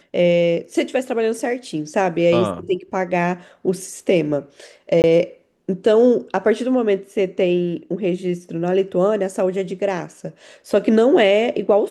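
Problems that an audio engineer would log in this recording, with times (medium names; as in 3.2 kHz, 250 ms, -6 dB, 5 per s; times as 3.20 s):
5.02–5.04 s: dropout 19 ms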